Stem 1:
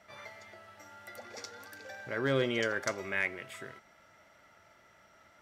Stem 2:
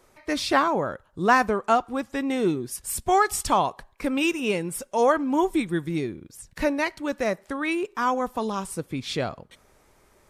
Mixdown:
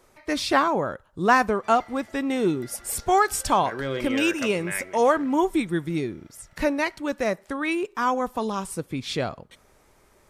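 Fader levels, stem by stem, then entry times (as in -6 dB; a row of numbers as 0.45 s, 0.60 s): 0.0 dB, +0.5 dB; 1.55 s, 0.00 s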